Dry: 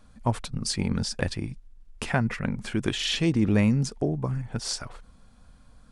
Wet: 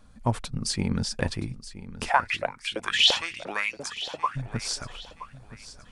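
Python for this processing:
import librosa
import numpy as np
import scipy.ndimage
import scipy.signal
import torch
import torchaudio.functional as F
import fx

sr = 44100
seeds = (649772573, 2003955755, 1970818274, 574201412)

y = fx.filter_lfo_highpass(x, sr, shape='saw_up', hz=2.9, low_hz=520.0, high_hz=4500.0, q=6.9, at=(2.08, 4.35), fade=0.02)
y = fx.echo_feedback(y, sr, ms=973, feedback_pct=33, wet_db=-15.0)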